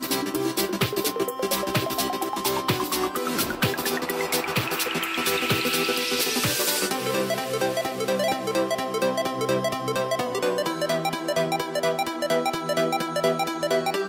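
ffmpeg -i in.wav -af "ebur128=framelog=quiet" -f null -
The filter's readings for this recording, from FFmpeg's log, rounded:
Integrated loudness:
  I:         -24.7 LUFS
  Threshold: -34.7 LUFS
Loudness range:
  LRA:         2.0 LU
  Threshold: -44.6 LUFS
  LRA low:   -25.4 LUFS
  LRA high:  -23.4 LUFS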